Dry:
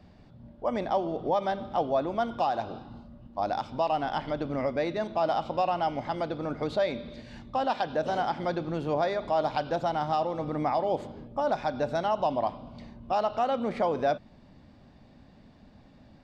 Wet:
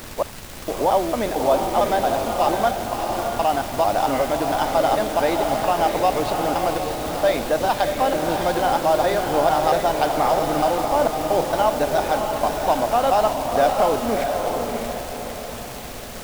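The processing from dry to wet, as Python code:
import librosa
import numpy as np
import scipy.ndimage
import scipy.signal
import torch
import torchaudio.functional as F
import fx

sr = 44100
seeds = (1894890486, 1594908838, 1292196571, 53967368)

p1 = fx.block_reorder(x, sr, ms=226.0, group=3)
p2 = fx.peak_eq(p1, sr, hz=150.0, db=-7.0, octaves=0.91)
p3 = fx.dmg_noise_colour(p2, sr, seeds[0], colour='pink', level_db=-43.0)
p4 = fx.quant_dither(p3, sr, seeds[1], bits=6, dither='none')
p5 = p3 + (p4 * 10.0 ** (-7.0 / 20.0))
p6 = fx.echo_diffused(p5, sr, ms=646, feedback_pct=44, wet_db=-4.0)
y = p6 * 10.0 ** (4.5 / 20.0)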